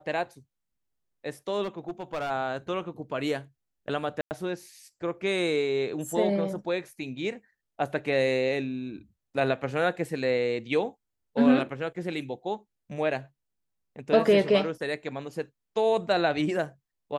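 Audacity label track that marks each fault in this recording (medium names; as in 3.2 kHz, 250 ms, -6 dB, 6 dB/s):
1.630000	2.310000	clipped -27.5 dBFS
4.210000	4.310000	dropout 99 ms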